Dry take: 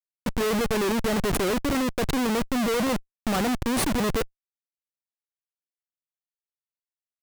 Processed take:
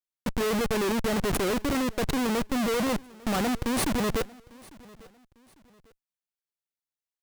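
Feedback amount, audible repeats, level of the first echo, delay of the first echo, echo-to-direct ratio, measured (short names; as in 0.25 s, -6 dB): 33%, 2, -23.0 dB, 0.849 s, -22.5 dB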